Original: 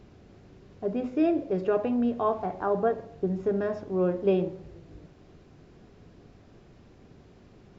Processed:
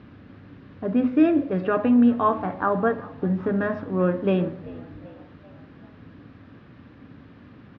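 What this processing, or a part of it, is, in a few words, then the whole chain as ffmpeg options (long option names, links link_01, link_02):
frequency-shifting delay pedal into a guitar cabinet: -filter_complex "[0:a]asplit=5[link_01][link_02][link_03][link_04][link_05];[link_02]adelay=389,afreqshift=66,volume=-22.5dB[link_06];[link_03]adelay=778,afreqshift=132,volume=-28dB[link_07];[link_04]adelay=1167,afreqshift=198,volume=-33.5dB[link_08];[link_05]adelay=1556,afreqshift=264,volume=-39dB[link_09];[link_01][link_06][link_07][link_08][link_09]amix=inputs=5:normalize=0,highpass=81,equalizer=frequency=96:width_type=q:width=4:gain=4,equalizer=frequency=270:width_type=q:width=4:gain=8,equalizer=frequency=390:width_type=q:width=4:gain=-9,equalizer=frequency=710:width_type=q:width=4:gain=-6,equalizer=frequency=1200:width_type=q:width=4:gain=5,equalizer=frequency=1700:width_type=q:width=4:gain=6,lowpass=frequency=3800:width=0.5412,lowpass=frequency=3800:width=1.3066,volume=6dB"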